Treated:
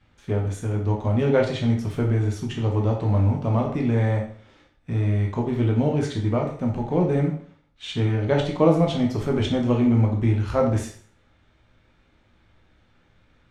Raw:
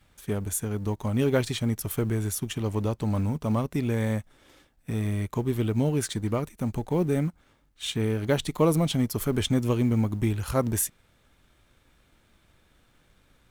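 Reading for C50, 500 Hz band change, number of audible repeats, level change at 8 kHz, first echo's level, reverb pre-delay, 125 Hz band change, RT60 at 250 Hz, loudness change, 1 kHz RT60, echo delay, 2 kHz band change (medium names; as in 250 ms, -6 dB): 7.0 dB, +5.0 dB, no echo, under -10 dB, no echo, 6 ms, +5.5 dB, 0.45 s, +4.5 dB, 0.50 s, no echo, +2.5 dB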